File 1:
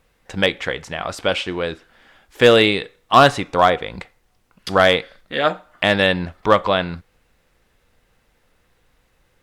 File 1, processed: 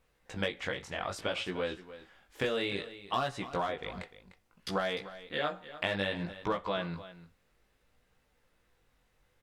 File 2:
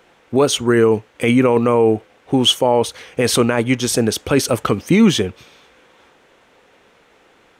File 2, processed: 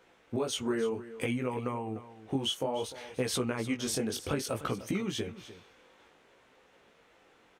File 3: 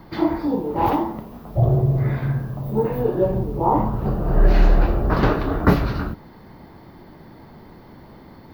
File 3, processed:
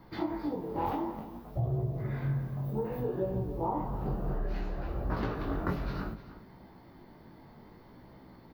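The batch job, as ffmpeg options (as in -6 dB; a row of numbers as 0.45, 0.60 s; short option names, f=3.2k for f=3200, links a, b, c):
-filter_complex "[0:a]acompressor=threshold=-18dB:ratio=12,flanger=delay=15.5:depth=6.6:speed=0.61,asplit=2[a][b];[b]aecho=0:1:300:0.178[c];[a][c]amix=inputs=2:normalize=0,volume=-7dB"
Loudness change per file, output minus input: -17.0, -17.5, -13.5 LU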